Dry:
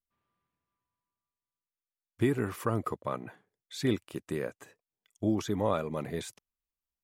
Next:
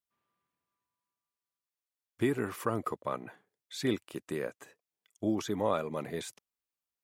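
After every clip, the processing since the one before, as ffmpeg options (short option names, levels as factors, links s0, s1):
-af "highpass=f=210:p=1"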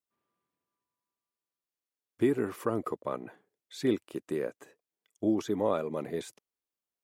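-af "equalizer=f=360:w=0.7:g=7.5,volume=0.668"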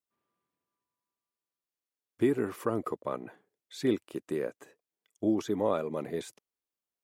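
-af anull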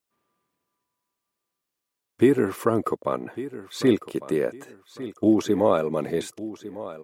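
-af "aecho=1:1:1152|2304|3456:0.178|0.0498|0.0139,volume=2.66"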